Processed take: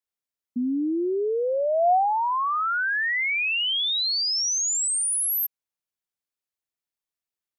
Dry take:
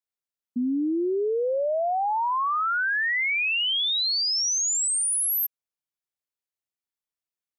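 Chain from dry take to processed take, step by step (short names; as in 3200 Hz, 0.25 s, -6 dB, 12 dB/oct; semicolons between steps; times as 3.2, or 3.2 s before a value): dynamic EQ 720 Hz, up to +7 dB, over -43 dBFS, Q 5.3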